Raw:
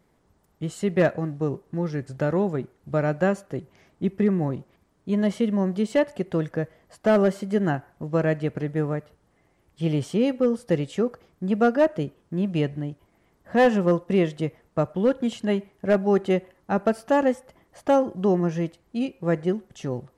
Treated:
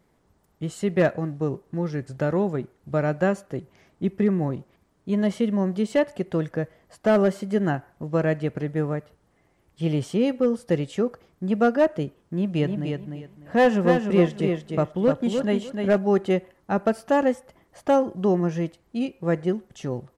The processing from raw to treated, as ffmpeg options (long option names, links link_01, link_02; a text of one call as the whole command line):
ffmpeg -i in.wav -filter_complex "[0:a]asplit=3[link_01][link_02][link_03];[link_01]afade=type=out:start_time=12.58:duration=0.02[link_04];[link_02]aecho=1:1:300|600|900:0.562|0.124|0.0272,afade=type=in:start_time=12.58:duration=0.02,afade=type=out:start_time=15.97:duration=0.02[link_05];[link_03]afade=type=in:start_time=15.97:duration=0.02[link_06];[link_04][link_05][link_06]amix=inputs=3:normalize=0" out.wav